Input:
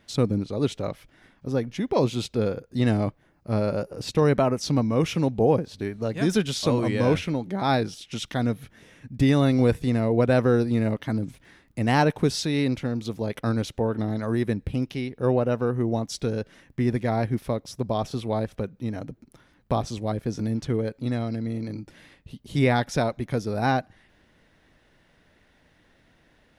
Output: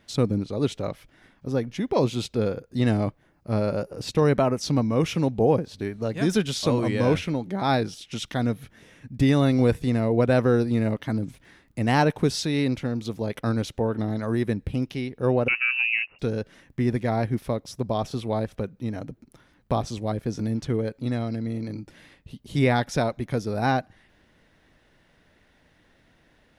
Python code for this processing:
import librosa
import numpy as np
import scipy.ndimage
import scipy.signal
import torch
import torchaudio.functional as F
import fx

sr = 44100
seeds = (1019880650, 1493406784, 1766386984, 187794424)

y = fx.freq_invert(x, sr, carrier_hz=2800, at=(15.48, 16.19))